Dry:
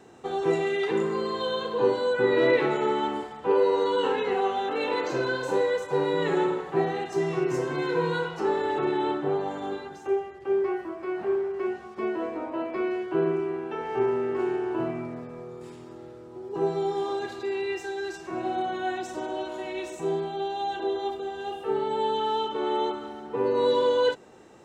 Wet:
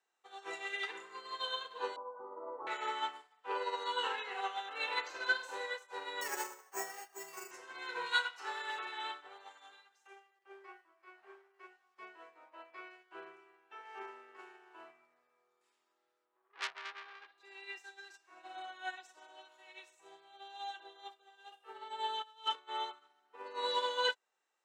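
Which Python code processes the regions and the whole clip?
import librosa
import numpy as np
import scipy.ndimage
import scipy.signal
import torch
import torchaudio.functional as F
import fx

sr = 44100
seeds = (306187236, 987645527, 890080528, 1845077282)

y = fx.chain(x, sr, fx.cheby1_lowpass(hz=1200.0, order=6),
    fx.peak_eq(hz=400.0, db=-3.5, octaves=0.92),
    fx.env_flatten(amount_pct=50), at=(1.96, 2.67))
y = fx.chain(y, sr, fx.lowpass(hz=3200.0, slope=6),
    fx.comb(ms=7.3, depth=0.37),
    fx.resample_bad(factor=6, down='filtered', up='hold'), at=(6.21, 7.51))
y = fx.chain(y, sr, fx.tilt_shelf(db=-5.0, hz=1100.0),
    fx.echo_filtered(ms=94, feedback_pct=81, hz=1900.0, wet_db=-15.5), at=(8.06, 10.39))
y = fx.chain(y, sr, fx.lowpass(hz=3500.0, slope=24),
    fx.transformer_sat(knee_hz=3200.0), at=(16.25, 17.38))
y = fx.chain(y, sr, fx.high_shelf(hz=3900.0, db=5.0),
    fx.over_compress(threshold_db=-31.0, ratio=-0.5), at=(22.22, 22.69))
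y = scipy.signal.sosfilt(scipy.signal.butter(2, 1200.0, 'highpass', fs=sr, output='sos'), y)
y = fx.upward_expand(y, sr, threshold_db=-48.0, expansion=2.5)
y = F.gain(torch.from_numpy(y), 4.0).numpy()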